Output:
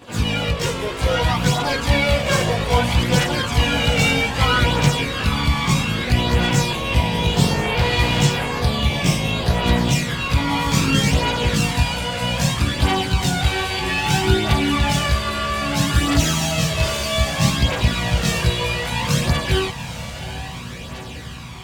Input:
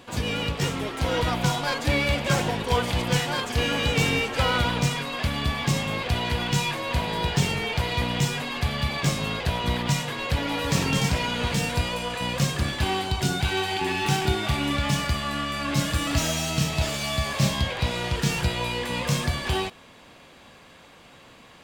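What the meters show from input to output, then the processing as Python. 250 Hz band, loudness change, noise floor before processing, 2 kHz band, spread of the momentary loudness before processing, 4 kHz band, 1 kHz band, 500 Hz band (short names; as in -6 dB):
+6.5 dB, +6.0 dB, -50 dBFS, +6.0 dB, 4 LU, +6.0 dB, +5.5 dB, +5.5 dB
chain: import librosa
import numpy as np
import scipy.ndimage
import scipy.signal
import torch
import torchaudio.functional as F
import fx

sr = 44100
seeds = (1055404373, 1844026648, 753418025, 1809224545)

y = fx.echo_diffused(x, sr, ms=830, feedback_pct=65, wet_db=-11.5)
y = fx.chorus_voices(y, sr, voices=2, hz=0.31, base_ms=18, depth_ms=1.0, mix_pct=65)
y = y * 10.0 ** (8.0 / 20.0)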